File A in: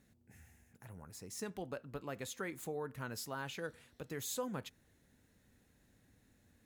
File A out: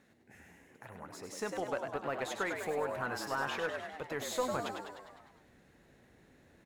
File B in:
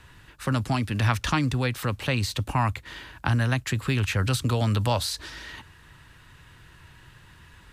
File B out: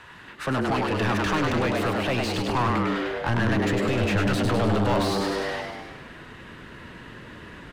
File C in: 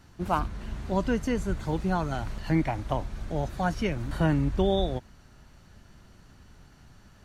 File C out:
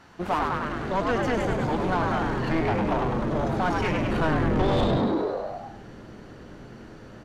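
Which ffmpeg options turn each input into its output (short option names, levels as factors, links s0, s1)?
-filter_complex "[0:a]aeval=exprs='0.376*(cos(1*acos(clip(val(0)/0.376,-1,1)))-cos(1*PI/2))+0.0531*(cos(4*acos(clip(val(0)/0.376,-1,1)))-cos(4*PI/2))+0.0168*(cos(8*acos(clip(val(0)/0.376,-1,1)))-cos(8*PI/2))':c=same,asubboost=boost=5.5:cutoff=80,asplit=2[s0][s1];[s1]asplit=8[s2][s3][s4][s5][s6][s7][s8][s9];[s2]adelay=101,afreqshift=97,volume=0.473[s10];[s3]adelay=202,afreqshift=194,volume=0.285[s11];[s4]adelay=303,afreqshift=291,volume=0.17[s12];[s5]adelay=404,afreqshift=388,volume=0.102[s13];[s6]adelay=505,afreqshift=485,volume=0.0617[s14];[s7]adelay=606,afreqshift=582,volume=0.0367[s15];[s8]adelay=707,afreqshift=679,volume=0.0221[s16];[s9]adelay=808,afreqshift=776,volume=0.0132[s17];[s10][s11][s12][s13][s14][s15][s16][s17]amix=inputs=8:normalize=0[s18];[s0][s18]amix=inputs=2:normalize=0,asplit=2[s19][s20];[s20]highpass=f=720:p=1,volume=22.4,asoftclip=type=tanh:threshold=0.562[s21];[s19][s21]amix=inputs=2:normalize=0,lowpass=f=1500:p=1,volume=0.501,volume=0.376"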